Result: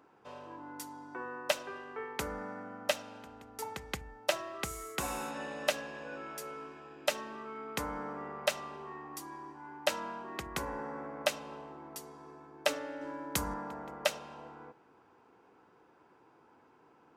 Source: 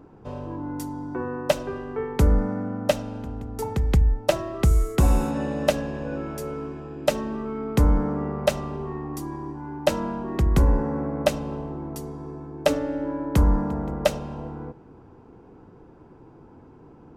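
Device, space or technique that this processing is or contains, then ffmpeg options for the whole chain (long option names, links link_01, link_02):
filter by subtraction: -filter_complex "[0:a]asettb=1/sr,asplit=3[link_01][link_02][link_03];[link_01]atrim=end=13.014[link_04];[link_02]atrim=start=13.01:end=13.54,asetpts=PTS-STARTPTS,afade=type=in:duration=0.004:curve=qsin,afade=type=out:start_time=0.526:duration=0.004:curve=qsin,bass=frequency=250:gain=6,treble=frequency=4000:gain=9[link_05];[link_03]atrim=start=13.536[link_06];[link_04][link_05]acrossfade=duration=0.004:curve1=hsin:curve2=qsin[link_07];[link_07][link_06]acrossfade=duration=0.004:curve1=qsin:curve2=hsin,asplit=2[link_08][link_09];[link_09]lowpass=1900,volume=-1[link_10];[link_08][link_10]amix=inputs=2:normalize=0,volume=-4dB"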